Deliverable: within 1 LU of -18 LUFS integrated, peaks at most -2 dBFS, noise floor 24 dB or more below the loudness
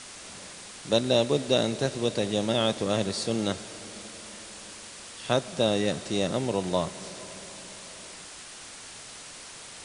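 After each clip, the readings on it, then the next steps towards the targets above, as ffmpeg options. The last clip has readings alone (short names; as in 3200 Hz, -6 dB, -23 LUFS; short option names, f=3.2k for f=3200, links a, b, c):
noise floor -44 dBFS; noise floor target -51 dBFS; loudness -27.0 LUFS; peak -8.5 dBFS; loudness target -18.0 LUFS
-> -af "afftdn=nr=7:nf=-44"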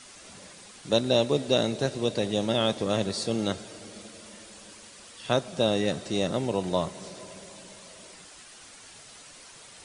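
noise floor -49 dBFS; noise floor target -51 dBFS
-> -af "afftdn=nr=6:nf=-49"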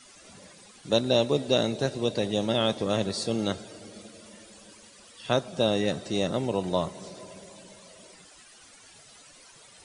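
noise floor -53 dBFS; loudness -27.0 LUFS; peak -8.5 dBFS; loudness target -18.0 LUFS
-> -af "volume=9dB,alimiter=limit=-2dB:level=0:latency=1"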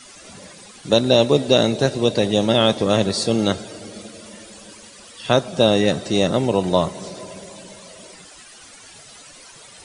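loudness -18.5 LUFS; peak -2.0 dBFS; noise floor -44 dBFS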